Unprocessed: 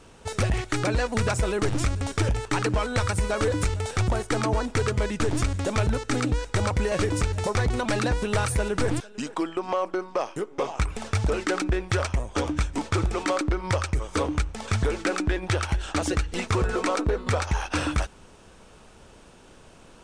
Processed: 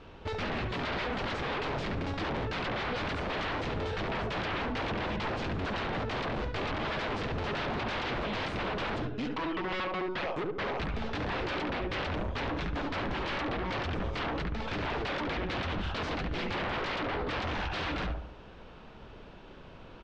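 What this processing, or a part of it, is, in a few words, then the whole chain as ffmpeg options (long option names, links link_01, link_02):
synthesiser wavefolder: -filter_complex "[0:a]asplit=2[link_01][link_02];[link_02]adelay=71,lowpass=frequency=1300:poles=1,volume=-4.5dB,asplit=2[link_03][link_04];[link_04]adelay=71,lowpass=frequency=1300:poles=1,volume=0.47,asplit=2[link_05][link_06];[link_06]adelay=71,lowpass=frequency=1300:poles=1,volume=0.47,asplit=2[link_07][link_08];[link_08]adelay=71,lowpass=frequency=1300:poles=1,volume=0.47,asplit=2[link_09][link_10];[link_10]adelay=71,lowpass=frequency=1300:poles=1,volume=0.47,asplit=2[link_11][link_12];[link_12]adelay=71,lowpass=frequency=1300:poles=1,volume=0.47[link_13];[link_01][link_03][link_05][link_07][link_09][link_11][link_13]amix=inputs=7:normalize=0,aeval=exprs='0.0398*(abs(mod(val(0)/0.0398+3,4)-2)-1)':channel_layout=same,lowpass=frequency=4000:width=0.5412,lowpass=frequency=4000:width=1.3066"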